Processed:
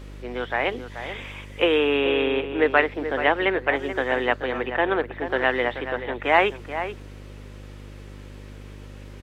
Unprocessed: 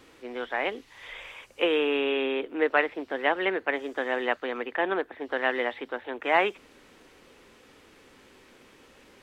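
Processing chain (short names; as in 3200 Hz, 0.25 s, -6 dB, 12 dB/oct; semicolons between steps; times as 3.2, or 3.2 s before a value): buzz 50 Hz, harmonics 12, -44 dBFS -7 dB/oct; outdoor echo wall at 74 m, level -10 dB; gain +4.5 dB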